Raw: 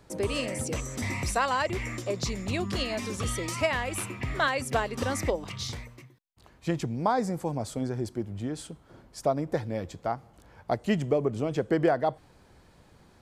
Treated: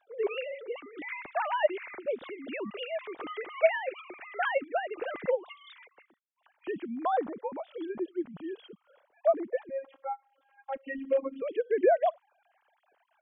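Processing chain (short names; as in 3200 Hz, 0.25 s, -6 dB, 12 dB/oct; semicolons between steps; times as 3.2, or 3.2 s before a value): sine-wave speech; 9.69–11.42 robotiser 270 Hz; gain -2 dB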